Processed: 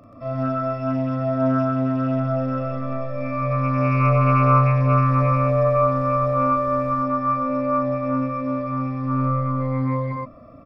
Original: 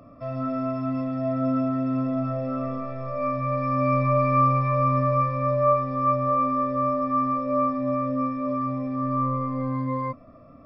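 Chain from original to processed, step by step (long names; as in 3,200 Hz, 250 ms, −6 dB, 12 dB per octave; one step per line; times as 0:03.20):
loudspeakers that aren't time-aligned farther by 13 metres −2 dB, 44 metres 0 dB
0:05.04–0:07.03: background noise brown −42 dBFS
highs frequency-modulated by the lows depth 0.13 ms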